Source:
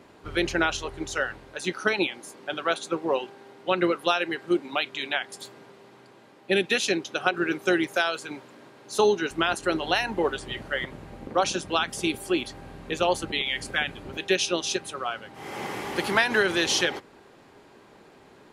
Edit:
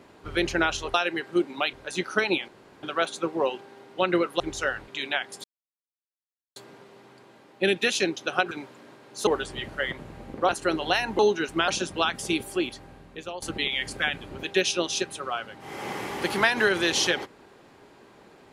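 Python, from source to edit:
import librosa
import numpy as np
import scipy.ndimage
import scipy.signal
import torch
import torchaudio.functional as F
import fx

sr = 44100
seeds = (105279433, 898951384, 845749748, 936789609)

y = fx.edit(x, sr, fx.swap(start_s=0.94, length_s=0.48, other_s=4.09, other_length_s=0.79),
    fx.room_tone_fill(start_s=2.17, length_s=0.35),
    fx.insert_silence(at_s=5.44, length_s=1.12),
    fx.cut(start_s=7.39, length_s=0.86),
    fx.swap(start_s=9.01, length_s=0.49, other_s=10.2, other_length_s=1.22),
    fx.fade_out_to(start_s=12.13, length_s=1.03, floor_db=-16.5), tone=tone)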